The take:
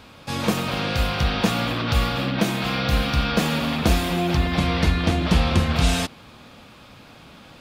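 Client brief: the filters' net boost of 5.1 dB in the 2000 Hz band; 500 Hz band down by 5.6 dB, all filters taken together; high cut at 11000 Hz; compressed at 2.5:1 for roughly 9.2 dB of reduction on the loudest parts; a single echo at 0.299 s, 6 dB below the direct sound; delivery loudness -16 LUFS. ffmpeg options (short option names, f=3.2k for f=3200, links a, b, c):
-af "lowpass=11k,equalizer=f=500:t=o:g=-8,equalizer=f=2k:t=o:g=7,acompressor=threshold=-28dB:ratio=2.5,aecho=1:1:299:0.501,volume=11.5dB"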